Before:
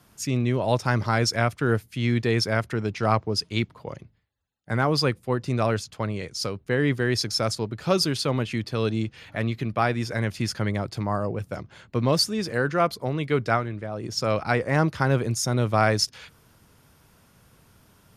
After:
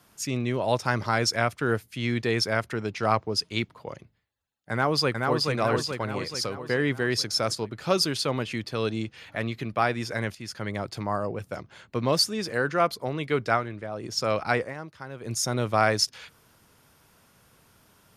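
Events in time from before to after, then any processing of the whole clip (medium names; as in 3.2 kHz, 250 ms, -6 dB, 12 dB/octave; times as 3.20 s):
4.71–5.48 s: echo throw 430 ms, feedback 55%, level -2.5 dB
10.35–10.83 s: fade in, from -12.5 dB
14.61–15.33 s: dip -15 dB, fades 0.13 s
whole clip: bass shelf 240 Hz -7.5 dB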